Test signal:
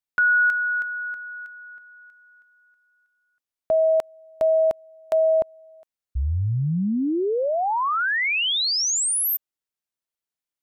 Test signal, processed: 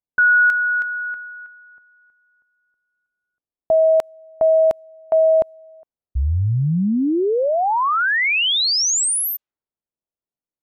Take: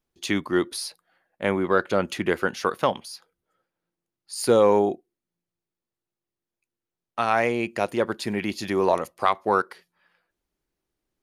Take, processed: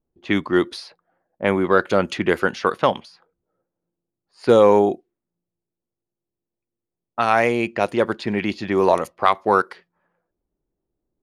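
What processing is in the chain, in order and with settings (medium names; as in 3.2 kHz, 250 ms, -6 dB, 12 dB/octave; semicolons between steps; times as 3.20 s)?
level-controlled noise filter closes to 640 Hz, open at -19.5 dBFS; trim +4.5 dB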